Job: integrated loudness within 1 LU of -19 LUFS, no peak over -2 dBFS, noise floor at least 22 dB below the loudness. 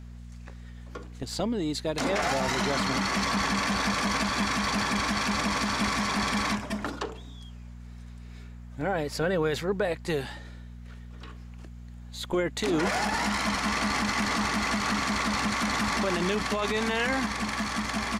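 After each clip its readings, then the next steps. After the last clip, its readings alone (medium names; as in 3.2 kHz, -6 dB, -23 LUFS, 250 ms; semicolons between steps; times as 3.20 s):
hum 60 Hz; highest harmonic 240 Hz; hum level -40 dBFS; loudness -27.5 LUFS; peak level -14.0 dBFS; loudness target -19.0 LUFS
-> de-hum 60 Hz, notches 4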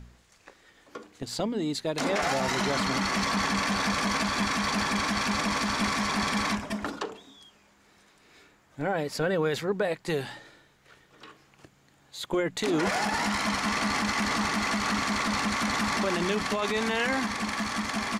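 hum not found; loudness -27.5 LUFS; peak level -14.5 dBFS; loudness target -19.0 LUFS
-> trim +8.5 dB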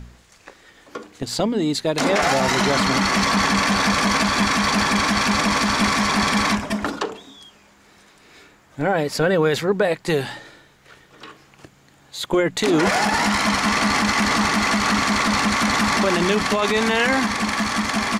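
loudness -19.0 LUFS; peak level -6.0 dBFS; noise floor -53 dBFS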